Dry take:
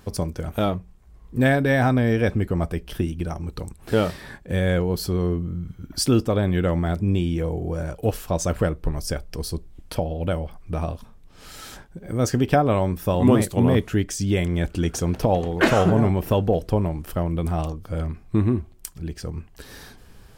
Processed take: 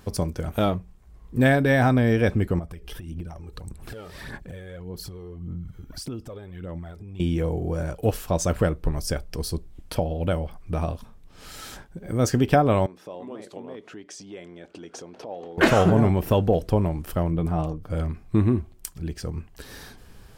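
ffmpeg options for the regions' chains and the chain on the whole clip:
ffmpeg -i in.wav -filter_complex "[0:a]asettb=1/sr,asplit=3[link_01][link_02][link_03];[link_01]atrim=end=2.594[link_04];[link_02]atrim=start=2.59:end=7.2,asetpts=PTS-STARTPTS,afade=type=in:duration=0.004:curve=qsin,afade=type=out:start_time=4.606:duration=0.004:curve=qsin,acompressor=threshold=-35dB:ratio=12:attack=3.2:release=140:knee=1:detection=peak,aphaser=in_gain=1:out_gain=1:delay=2.5:decay=0.51:speed=1.7:type=sinusoidal[link_05];[link_03]atrim=start=7.196[link_06];[link_04][link_05]acrossfade=duration=0.004:curve1=hsin:curve2=qsin[link_07];[link_07][link_06]acrossfade=duration=0.004:curve1=qsin:curve2=hsin,asettb=1/sr,asplit=3[link_08][link_09][link_10];[link_08]atrim=end=12.864[link_11];[link_09]atrim=start=12.86:end=15.58,asetpts=PTS-STARTPTS,afade=type=in:duration=0.004:curve=qsin,afade=type=out:start_time=2.716:duration=0.004:curve=qsin,equalizer=frequency=2000:width_type=o:width=2.8:gain=-7.5,acompressor=threshold=-26dB:ratio=10:attack=3.2:release=140:knee=1:detection=peak,highpass=410,lowpass=4300[link_12];[link_10]atrim=start=15.576[link_13];[link_11][link_12]acrossfade=duration=0.004:curve1=hsin:curve2=qsin[link_14];[link_14][link_13]acrossfade=duration=0.004:curve1=qsin:curve2=hsin,asettb=1/sr,asplit=3[link_15][link_16][link_17];[link_15]atrim=end=17.304[link_18];[link_16]atrim=start=17.3:end=17.9,asetpts=PTS-STARTPTS,afade=type=in:duration=0.004:curve=qsin,afade=type=out:start_time=0.596:duration=0.004:curve=qsin,highshelf=frequency=2100:gain=-10,aecho=1:1:6.7:0.35,atrim=end_sample=26460[link_19];[link_17]atrim=start=17.896[link_20];[link_18][link_19]acrossfade=duration=0.004:curve1=hsin:curve2=qsin[link_21];[link_21][link_20]acrossfade=duration=0.004:curve1=qsin:curve2=hsin" out.wav

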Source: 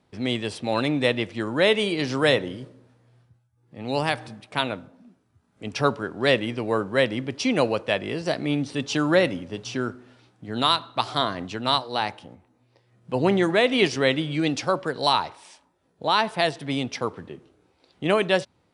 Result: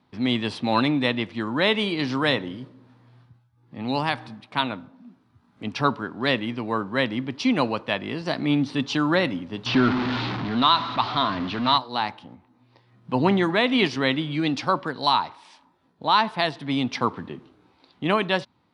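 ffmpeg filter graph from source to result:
ffmpeg -i in.wav -filter_complex "[0:a]asettb=1/sr,asplit=3[link_01][link_02][link_03];[link_01]atrim=end=9.664[link_04];[link_02]atrim=start=9.66:end=11.78,asetpts=PTS-STARTPTS,afade=type=in:duration=0.004:curve=qsin,afade=type=out:start_time=2.116:duration=0.004:curve=qsin,aeval=exprs='val(0)+0.5*0.0562*sgn(val(0))':channel_layout=same,lowpass=frequency=4600:width=0.5412,lowpass=frequency=4600:width=1.3066[link_05];[link_03]atrim=start=11.776[link_06];[link_04][link_05]acrossfade=duration=0.004:curve1=hsin:curve2=qsin[link_07];[link_07][link_06]acrossfade=duration=0.004:curve1=qsin:curve2=hsin,equalizer=frequency=125:width_type=o:width=1:gain=4,equalizer=frequency=250:width_type=o:width=1:gain=9,equalizer=frequency=500:width_type=o:width=1:gain=-3,equalizer=frequency=1000:width_type=o:width=1:gain=10,equalizer=frequency=2000:width_type=o:width=1:gain=3,equalizer=frequency=4000:width_type=o:width=1:gain=8,equalizer=frequency=8000:width_type=o:width=1:gain=-7,dynaudnorm=framelen=250:gausssize=3:maxgain=5dB,volume=-5.5dB" out.wav

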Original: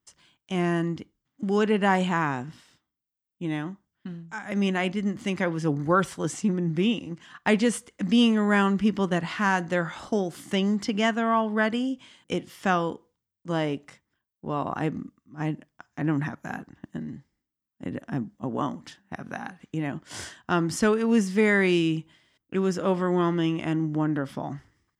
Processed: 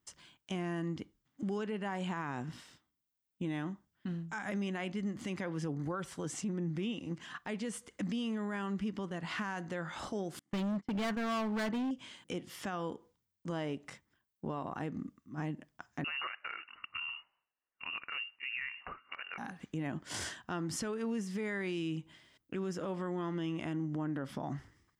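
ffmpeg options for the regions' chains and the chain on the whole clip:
ffmpeg -i in.wav -filter_complex "[0:a]asettb=1/sr,asplit=3[link_01][link_02][link_03];[link_01]atrim=end=10.394[link_04];[link_02]atrim=start=10.39:end=11.91,asetpts=PTS-STARTPTS,afade=type=in:duration=0.004:curve=qsin,afade=type=out:start_time=1.516:duration=0.004:curve=qsin,aemphasis=mode=reproduction:type=75kf,agate=range=-34dB:threshold=-33dB:ratio=16:release=100:detection=peak,volume=28.5dB,asoftclip=hard,volume=-28.5dB[link_05];[link_03]atrim=start=11.906[link_06];[link_04][link_05]acrossfade=duration=0.004:curve1=hsin:curve2=qsin[link_07];[link_07][link_06]acrossfade=duration=0.004:curve1=qsin:curve2=hsin,asettb=1/sr,asplit=3[link_08][link_09][link_10];[link_08]atrim=end=16.044[link_11];[link_09]atrim=start=16.04:end=19.38,asetpts=PTS-STARTPTS,afade=type=in:duration=0.004:curve=qsin,afade=type=out:start_time=3.336:duration=0.004:curve=qsin,tiltshelf=frequency=710:gain=-8,lowpass=frequency=2600:width_type=q:width=0.5098,lowpass=frequency=2600:width_type=q:width=0.6013,lowpass=frequency=2600:width_type=q:width=0.9,lowpass=frequency=2600:width_type=q:width=2.563,afreqshift=-3000[link_12];[link_10]atrim=start=19.376[link_13];[link_11][link_12]acrossfade=duration=0.004:curve1=hsin:curve2=qsin[link_14];[link_14][link_13]acrossfade=duration=0.004:curve1=qsin:curve2=hsin,acompressor=threshold=-34dB:ratio=6,alimiter=level_in=6dB:limit=-24dB:level=0:latency=1:release=20,volume=-6dB,volume=1dB" out.wav

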